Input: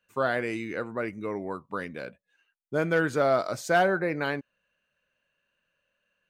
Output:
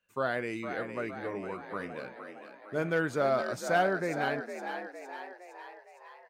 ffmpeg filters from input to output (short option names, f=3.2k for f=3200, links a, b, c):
-filter_complex "[0:a]asettb=1/sr,asplit=3[a][b][c];[a]atrim=end=1.104[d];[b]atrim=start=1.1:end=2.93,asetpts=PTS-STARTPTS,afade=t=in:d=0.004:c=qsin,afade=t=out:st=1.826:d=0.004:c=qsin,bandreject=f=70.74:t=h:w=4,bandreject=f=141.48:t=h:w=4,bandreject=f=212.22:t=h:w=4,bandreject=f=282.96:t=h:w=4,bandreject=f=353.7:t=h:w=4,bandreject=f=424.44:t=h:w=4,bandreject=f=495.18:t=h:w=4,bandreject=f=565.92:t=h:w=4,bandreject=f=636.66:t=h:w=4,bandreject=f=707.4:t=h:w=4,bandreject=f=778.14:t=h:w=4,bandreject=f=848.88:t=h:w=4,bandreject=f=919.62:t=h:w=4,bandreject=f=990.36:t=h:w=4,bandreject=f=1.0611k:t=h:w=4,bandreject=f=1.13184k:t=h:w=4,bandreject=f=1.20258k:t=h:w=4,bandreject=f=1.27332k:t=h:w=4,bandreject=f=1.34406k:t=h:w=4,bandreject=f=1.4148k:t=h:w=4,bandreject=f=1.48554k:t=h:w=4,bandreject=f=1.55628k:t=h:w=4,bandreject=f=1.62702k:t=h:w=4,bandreject=f=1.69776k:t=h:w=4,bandreject=f=1.7685k:t=h:w=4,bandreject=f=1.83924k:t=h:w=4,bandreject=f=1.90998k:t=h:w=4,bandreject=f=1.98072k:t=h:w=4,bandreject=f=2.05146k:t=h:w=4,bandreject=f=2.1222k:t=h:w=4,bandreject=f=2.19294k:t=h:w=4,bandreject=f=2.26368k:t=h:w=4,bandreject=f=2.33442k:t=h:w=4,bandreject=f=2.40516k:t=h:w=4,bandreject=f=2.4759k:t=h:w=4[e];[c]atrim=start=2.926[f];[d][e]acrossfade=d=0.004:c1=hsin:c2=qsin[g];[g][f]acrossfade=d=0.004:c1=qsin:c2=hsin,asplit=8[h][i][j][k][l][m][n][o];[i]adelay=461,afreqshift=61,volume=-8.5dB[p];[j]adelay=922,afreqshift=122,volume=-13.4dB[q];[k]adelay=1383,afreqshift=183,volume=-18.3dB[r];[l]adelay=1844,afreqshift=244,volume=-23.1dB[s];[m]adelay=2305,afreqshift=305,volume=-28dB[t];[n]adelay=2766,afreqshift=366,volume=-32.9dB[u];[o]adelay=3227,afreqshift=427,volume=-37.8dB[v];[h][p][q][r][s][t][u][v]amix=inputs=8:normalize=0,volume=-4.5dB"